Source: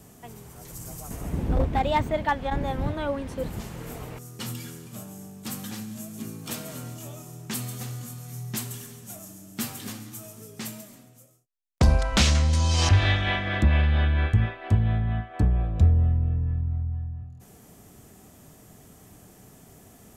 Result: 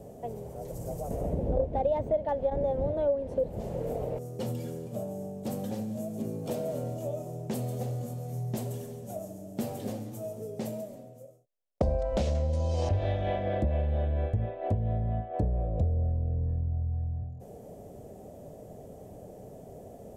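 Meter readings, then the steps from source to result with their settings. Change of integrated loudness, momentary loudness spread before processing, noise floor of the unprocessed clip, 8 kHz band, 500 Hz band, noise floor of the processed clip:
-6.0 dB, 19 LU, -52 dBFS, -14.5 dB, +4.0 dB, -48 dBFS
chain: FFT filter 320 Hz 0 dB, 560 Hz +14 dB, 1.2 kHz -13 dB; compression 3:1, threshold -31 dBFS, peak gain reduction 14.5 dB; trim +2.5 dB

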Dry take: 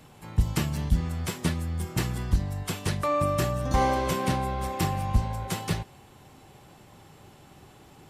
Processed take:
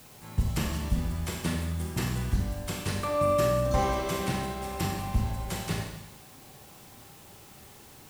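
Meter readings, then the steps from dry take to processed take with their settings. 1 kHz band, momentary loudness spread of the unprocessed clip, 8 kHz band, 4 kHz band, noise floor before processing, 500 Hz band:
-3.0 dB, 7 LU, -1.0 dB, -1.0 dB, -53 dBFS, +1.5 dB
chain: Schroeder reverb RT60 1 s, combs from 29 ms, DRR 0.5 dB; added noise white -50 dBFS; trim -4 dB

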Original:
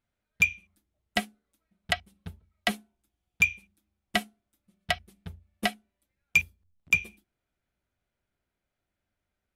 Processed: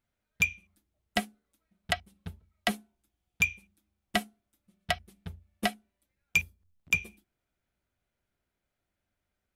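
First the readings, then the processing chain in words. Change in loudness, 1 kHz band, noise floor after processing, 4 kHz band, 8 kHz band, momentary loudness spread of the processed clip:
-3.0 dB, -0.5 dB, -85 dBFS, -2.0 dB, -0.5 dB, 18 LU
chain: dynamic bell 2.8 kHz, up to -4 dB, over -37 dBFS, Q 0.74

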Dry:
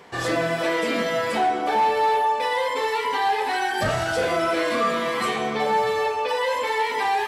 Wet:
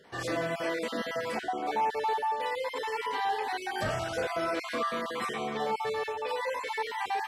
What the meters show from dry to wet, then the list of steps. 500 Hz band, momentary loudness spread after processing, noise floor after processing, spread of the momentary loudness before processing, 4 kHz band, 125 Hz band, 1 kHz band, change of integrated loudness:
-9.0 dB, 4 LU, -41 dBFS, 3 LU, -9.5 dB, -8.5 dB, -9.0 dB, -9.0 dB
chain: random holes in the spectrogram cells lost 22%; trim -8 dB

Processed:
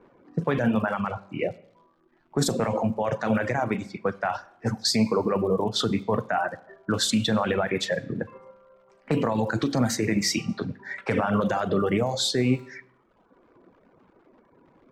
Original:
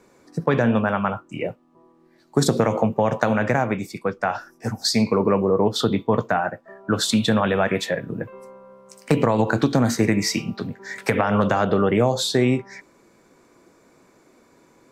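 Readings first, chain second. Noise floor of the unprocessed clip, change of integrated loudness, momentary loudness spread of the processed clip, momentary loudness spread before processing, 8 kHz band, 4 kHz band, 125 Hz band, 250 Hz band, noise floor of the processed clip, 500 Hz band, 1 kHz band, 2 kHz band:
-57 dBFS, -4.5 dB, 9 LU, 11 LU, -2.0 dB, -1.5 dB, -5.0 dB, -4.0 dB, -63 dBFS, -5.0 dB, -4.5 dB, -4.0 dB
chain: peak limiter -13.5 dBFS, peak gain reduction 10.5 dB; Schroeder reverb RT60 0.78 s, combs from 32 ms, DRR 8 dB; crackle 290 per s -40 dBFS; reverb removal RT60 1.1 s; level-controlled noise filter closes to 1.2 kHz, open at -20 dBFS

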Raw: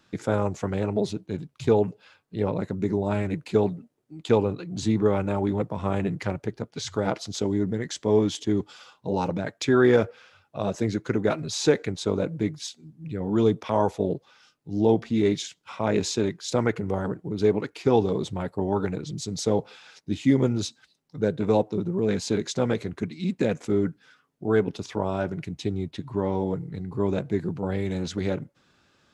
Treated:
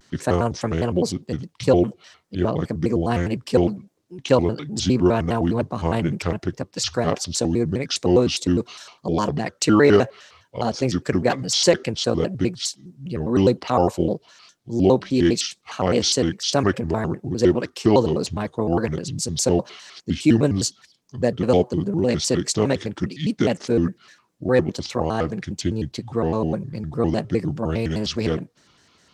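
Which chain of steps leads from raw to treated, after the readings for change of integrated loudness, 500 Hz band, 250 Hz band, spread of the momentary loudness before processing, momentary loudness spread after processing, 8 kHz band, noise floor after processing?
+4.5 dB, +3.5 dB, +4.5 dB, 10 LU, 10 LU, +9.5 dB, -61 dBFS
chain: peaking EQ 5.6 kHz +7 dB 1.3 oct; vibrato with a chosen wave square 4.9 Hz, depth 250 cents; trim +4 dB

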